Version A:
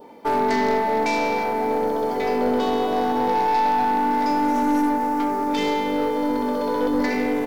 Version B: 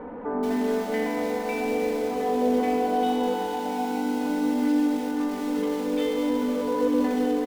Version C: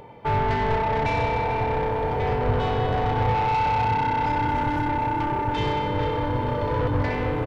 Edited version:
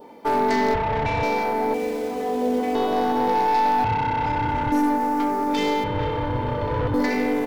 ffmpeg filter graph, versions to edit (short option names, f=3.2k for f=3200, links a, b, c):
-filter_complex "[2:a]asplit=3[a][b][c];[0:a]asplit=5[d][e][f][g][h];[d]atrim=end=0.742[i];[a]atrim=start=0.738:end=1.232[j];[e]atrim=start=1.228:end=1.742[k];[1:a]atrim=start=1.738:end=2.752[l];[f]atrim=start=2.748:end=3.842[m];[b]atrim=start=3.838:end=4.722[n];[g]atrim=start=4.718:end=5.842[o];[c]atrim=start=5.838:end=6.942[p];[h]atrim=start=6.938[q];[i][j]acrossfade=d=0.004:c1=hsin:c2=hsin[r];[r][k]acrossfade=d=0.004:c1=hsin:c2=hsin[s];[s][l]acrossfade=d=0.004:c1=hsin:c2=hsin[t];[t][m]acrossfade=d=0.004:c1=hsin:c2=hsin[u];[u][n]acrossfade=d=0.004:c1=hsin:c2=hsin[v];[v][o]acrossfade=d=0.004:c1=hsin:c2=hsin[w];[w][p]acrossfade=d=0.004:c1=hsin:c2=hsin[x];[x][q]acrossfade=d=0.004:c1=hsin:c2=hsin"